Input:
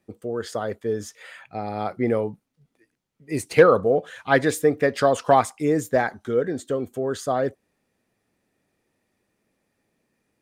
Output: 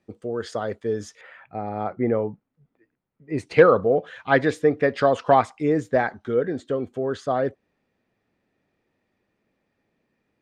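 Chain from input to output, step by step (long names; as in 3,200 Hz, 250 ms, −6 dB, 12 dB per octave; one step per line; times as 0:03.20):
low-pass filter 6,300 Hz 12 dB per octave, from 0:01.21 1,800 Hz, from 0:03.38 3,800 Hz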